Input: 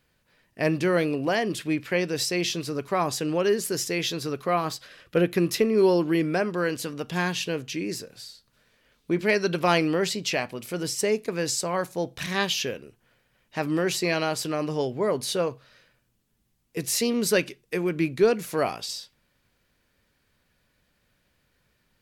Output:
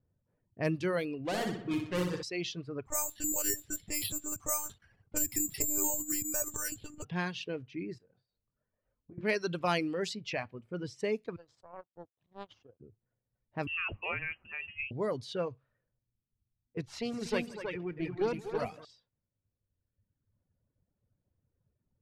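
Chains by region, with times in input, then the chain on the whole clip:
0:01.25–0:02.23: gap after every zero crossing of 0.22 ms + flutter between parallel walls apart 10.6 metres, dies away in 1.4 s
0:02.86–0:07.05: downward compressor 3 to 1, threshold −26 dBFS + one-pitch LPC vocoder at 8 kHz 300 Hz + bad sample-rate conversion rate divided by 6×, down filtered, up zero stuff
0:07.98–0:09.18: low-shelf EQ 190 Hz −5.5 dB + downward compressor 10 to 1, threshold −43 dBFS + double-tracking delay 22 ms −4.5 dB
0:11.36–0:12.80: high-pass filter 430 Hz 6 dB per octave + flat-topped bell 1,800 Hz −11.5 dB 1.2 octaves + power curve on the samples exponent 2
0:13.67–0:14.91: low-shelf EQ 220 Hz −8.5 dB + voice inversion scrambler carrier 3,000 Hz
0:16.81–0:18.85: tube saturation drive 14 dB, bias 0.6 + multi-tap delay 73/166/241/321/447 ms −17.5/−12/−7.5/−4/−20 dB
whole clip: reverb reduction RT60 1.7 s; low-pass that shuts in the quiet parts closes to 610 Hz, open at −20.5 dBFS; parametric band 100 Hz +11 dB 0.92 octaves; level −8 dB

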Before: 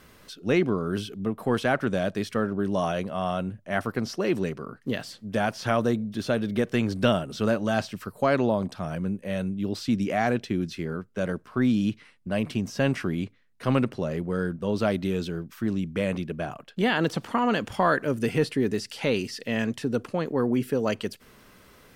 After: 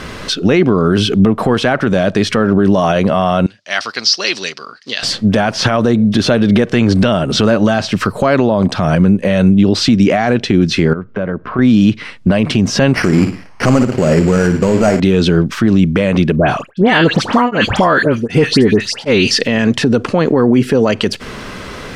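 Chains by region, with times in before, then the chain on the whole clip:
0:03.46–0:05.03: low-pass with resonance 4,800 Hz, resonance Q 3.4 + first difference
0:10.93–0:11.59: low-pass filter 1,900 Hz + downward compressor 3 to 1, threshold −46 dBFS + notch filter 860 Hz, Q 17
0:12.95–0:15.00: variable-slope delta modulation 16 kbit/s + bad sample-rate conversion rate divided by 6×, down none, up hold + flutter between parallel walls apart 9.6 metres, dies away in 0.31 s
0:16.36–0:19.31: all-pass dispersion highs, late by 95 ms, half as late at 2,000 Hz + tremolo along a rectified sine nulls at 1.3 Hz
whole clip: low-pass filter 6,200 Hz 12 dB per octave; downward compressor 4 to 1, threshold −31 dBFS; boost into a limiter +27 dB; level −1 dB

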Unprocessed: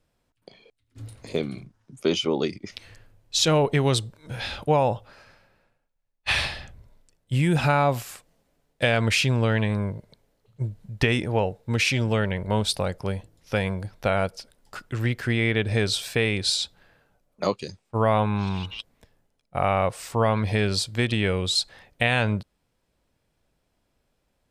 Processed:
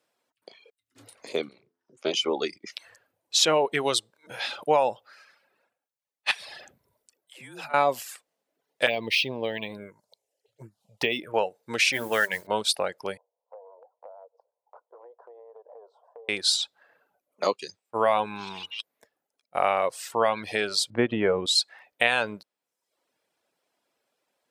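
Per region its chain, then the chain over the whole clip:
0:01.49–0:02.14: low-pass filter 5,500 Hz + amplitude modulation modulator 240 Hz, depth 75% + hum removal 85.81 Hz, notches 8
0:06.31–0:07.74: high-shelf EQ 7,600 Hz +5.5 dB + downward compressor, threshold −34 dBFS + all-pass dispersion lows, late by 116 ms, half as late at 380 Hz
0:08.86–0:11.34: phaser swept by the level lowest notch 190 Hz, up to 1,400 Hz, full sweep at −19 dBFS + linearly interpolated sample-rate reduction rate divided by 2×
0:11.92–0:12.47: parametric band 1,700 Hz +10 dB 0.38 octaves + mains-hum notches 50/100/150/200/250/300/350 Hz + noise that follows the level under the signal 20 dB
0:13.17–0:16.29: elliptic band-pass filter 470–1,000 Hz, stop band 50 dB + downward compressor, threshold −42 dBFS + tube saturation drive 20 dB, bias 0.45
0:20.90–0:21.46: low-pass filter 1,700 Hz + low-shelf EQ 480 Hz +11.5 dB
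whole clip: reverb reduction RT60 0.7 s; high-pass filter 410 Hz 12 dB per octave; level +1.5 dB

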